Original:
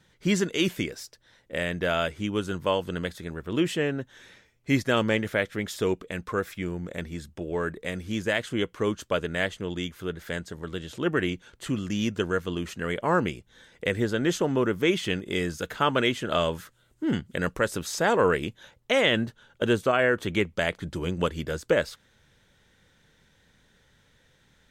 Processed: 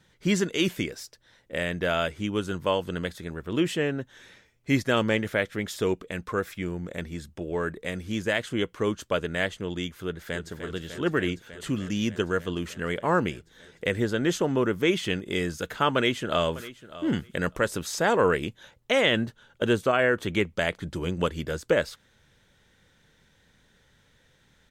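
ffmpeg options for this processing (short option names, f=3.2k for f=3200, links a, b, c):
-filter_complex "[0:a]asplit=2[a][b];[b]afade=t=in:st=10.04:d=0.01,afade=t=out:st=10.51:d=0.01,aecho=0:1:300|600|900|1200|1500|1800|2100|2400|2700|3000|3300|3600:0.354813|0.301591|0.256353|0.2179|0.185215|0.157433|0.133818|0.113745|0.0966833|0.0821808|0.0698537|0.0593756[c];[a][c]amix=inputs=2:normalize=0,asplit=2[d][e];[e]afade=t=in:st=15.95:d=0.01,afade=t=out:st=17.05:d=0.01,aecho=0:1:600|1200:0.141254|0.0211881[f];[d][f]amix=inputs=2:normalize=0"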